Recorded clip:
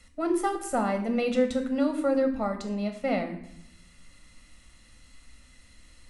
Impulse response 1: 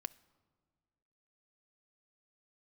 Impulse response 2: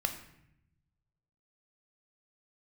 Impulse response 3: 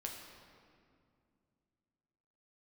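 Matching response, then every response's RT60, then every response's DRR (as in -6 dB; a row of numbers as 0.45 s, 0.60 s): 2; 1.8 s, 0.75 s, 2.3 s; 15.0 dB, 6.0 dB, 0.0 dB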